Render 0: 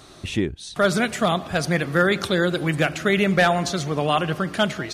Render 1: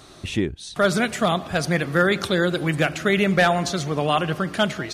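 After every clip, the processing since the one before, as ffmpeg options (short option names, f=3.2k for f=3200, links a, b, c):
-af anull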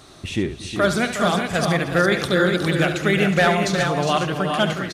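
-af "aecho=1:1:70|230|363|407|559:0.299|0.106|0.316|0.531|0.15"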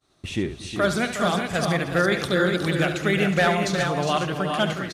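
-af "agate=range=-33dB:threshold=-35dB:ratio=3:detection=peak,volume=-3dB"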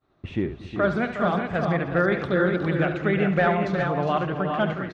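-af "lowpass=1.8k"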